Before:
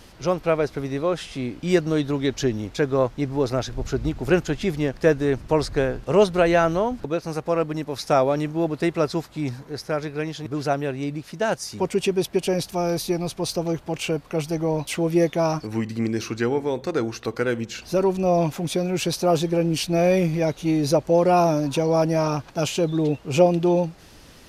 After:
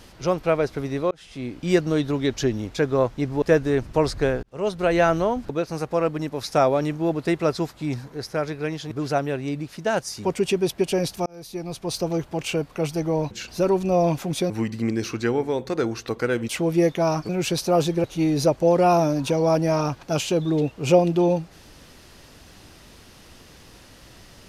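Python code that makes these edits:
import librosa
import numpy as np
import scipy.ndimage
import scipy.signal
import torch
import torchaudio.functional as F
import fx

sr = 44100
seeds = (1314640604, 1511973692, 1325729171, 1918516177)

y = fx.edit(x, sr, fx.fade_in_span(start_s=1.11, length_s=0.66, curve='qsin'),
    fx.cut(start_s=3.42, length_s=1.55),
    fx.fade_in_span(start_s=5.98, length_s=0.6),
    fx.fade_in_span(start_s=12.81, length_s=0.77),
    fx.swap(start_s=14.86, length_s=0.81, other_s=17.65, other_length_s=1.19),
    fx.cut(start_s=19.59, length_s=0.92), tone=tone)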